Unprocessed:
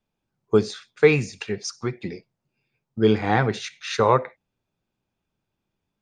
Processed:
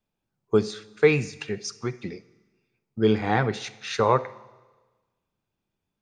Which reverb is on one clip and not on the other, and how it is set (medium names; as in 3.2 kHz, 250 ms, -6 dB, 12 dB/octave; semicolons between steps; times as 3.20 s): Schroeder reverb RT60 1.3 s, combs from 33 ms, DRR 18.5 dB; trim -2.5 dB